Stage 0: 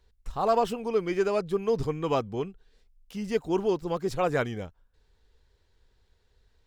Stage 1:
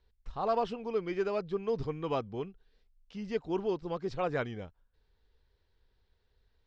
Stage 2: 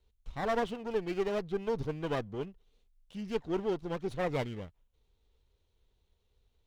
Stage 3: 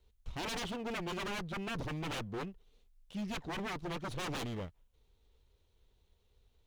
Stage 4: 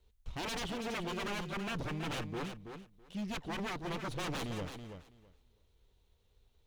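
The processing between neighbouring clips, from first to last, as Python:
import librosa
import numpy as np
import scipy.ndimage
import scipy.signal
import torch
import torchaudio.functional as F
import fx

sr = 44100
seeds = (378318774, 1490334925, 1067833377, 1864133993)

y1 = scipy.signal.sosfilt(scipy.signal.butter(4, 5200.0, 'lowpass', fs=sr, output='sos'), x)
y1 = y1 * librosa.db_to_amplitude(-6.0)
y2 = fx.lower_of_two(y1, sr, delay_ms=0.3)
y3 = 10.0 ** (-36.0 / 20.0) * (np.abs((y2 / 10.0 ** (-36.0 / 20.0) + 3.0) % 4.0 - 2.0) - 1.0)
y3 = y3 * librosa.db_to_amplitude(2.5)
y4 = fx.echo_feedback(y3, sr, ms=328, feedback_pct=16, wet_db=-8.0)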